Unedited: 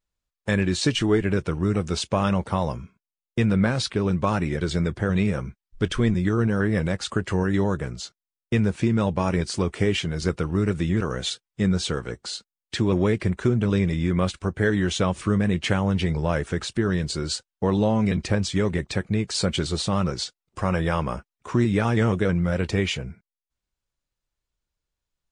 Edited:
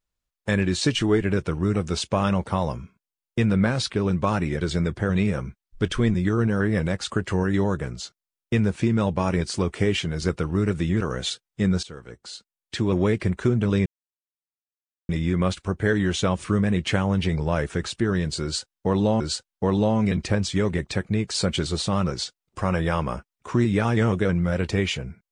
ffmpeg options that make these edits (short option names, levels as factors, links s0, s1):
-filter_complex "[0:a]asplit=4[s0][s1][s2][s3];[s0]atrim=end=11.83,asetpts=PTS-STARTPTS,afade=t=out:st=11.826:d=0.004:c=hsin:silence=0.158489[s4];[s1]atrim=start=11.83:end=13.86,asetpts=PTS-STARTPTS,afade=t=in:d=1.21:silence=0.158489,afade=t=out:st=2.026:d=0.004:c=hsin,apad=pad_dur=1.23[s5];[s2]atrim=start=13.86:end=17.972,asetpts=PTS-STARTPTS,afade=t=in:d=0.004:c=hsin[s6];[s3]atrim=start=17.198[s7];[s4][s5][s6]concat=n=3:v=0:a=1[s8];[s8][s7]acrossfade=d=0.004:c1=hsin:c2=hsin"